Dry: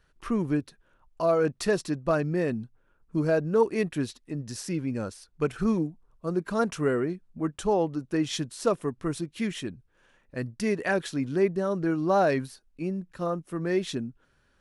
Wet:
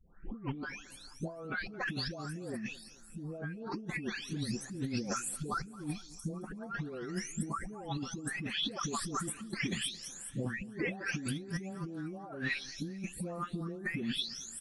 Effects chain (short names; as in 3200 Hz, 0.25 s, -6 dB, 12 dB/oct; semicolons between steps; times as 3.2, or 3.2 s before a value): spectral delay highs late, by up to 0.687 s; small resonant body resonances 210/780/1300/3400 Hz, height 10 dB, ringing for 80 ms; negative-ratio compressor -36 dBFS, ratio -1; on a send: feedback echo 0.22 s, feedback 48%, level -20 dB; on the sum: gain -3.5 dB